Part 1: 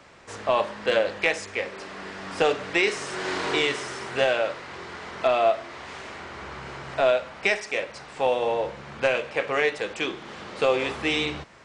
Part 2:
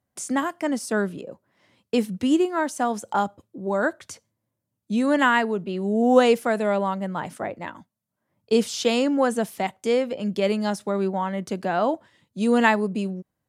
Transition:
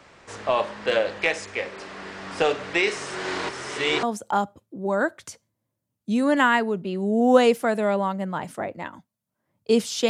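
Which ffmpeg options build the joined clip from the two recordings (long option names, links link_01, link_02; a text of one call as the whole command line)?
ffmpeg -i cue0.wav -i cue1.wav -filter_complex "[0:a]apad=whole_dur=10.09,atrim=end=10.09,asplit=2[link_01][link_02];[link_01]atrim=end=3.492[link_03];[link_02]atrim=start=3.488:end=4.032,asetpts=PTS-STARTPTS,areverse[link_04];[1:a]atrim=start=2.848:end=8.91[link_05];[link_03][link_04]acrossfade=duration=0.004:curve1=hsin:curve2=hsin[link_06];[link_06][link_05]acrossfade=duration=0.004:curve1=hsin:curve2=hsin" out.wav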